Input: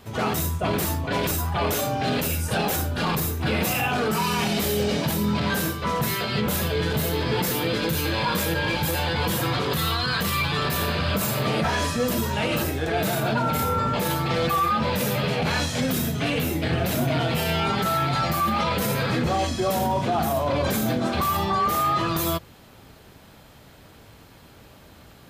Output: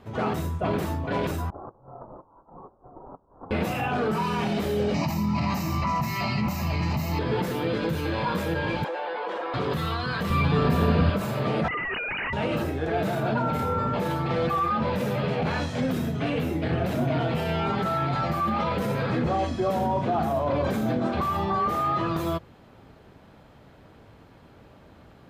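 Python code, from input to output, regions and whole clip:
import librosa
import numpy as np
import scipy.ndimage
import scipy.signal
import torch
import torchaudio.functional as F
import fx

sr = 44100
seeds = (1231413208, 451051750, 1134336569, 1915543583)

y = fx.chain(x, sr, fx.steep_highpass(hz=2700.0, slope=72),
    fx.over_compress(threshold_db=-41.0, ratio=-1.0),
    fx.freq_invert(carrier_hz=3700), at=(1.5, 3.51))
y = fx.chain(y, sr, fx.high_shelf(hz=4300.0, db=9.5),
    fx.fixed_phaser(hz=2300.0, stages=8),
    fx.env_flatten(amount_pct=100), at=(4.94, 7.19))
y = fx.chain(y, sr, fx.highpass(hz=440.0, slope=24),
    fx.spacing_loss(db_at_10k=28),
    fx.env_flatten(amount_pct=100), at=(8.84, 9.54))
y = fx.chain(y, sr, fx.low_shelf(hz=450.0, db=10.0),
    fx.comb(ms=4.3, depth=0.34), at=(10.3, 11.1))
y = fx.chain(y, sr, fx.sine_speech(),
    fx.schmitt(flips_db=-36.0),
    fx.freq_invert(carrier_hz=2900), at=(11.68, 12.33))
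y = fx.lowpass(y, sr, hz=1200.0, slope=6)
y = fx.low_shelf(y, sr, hz=120.0, db=-4.0)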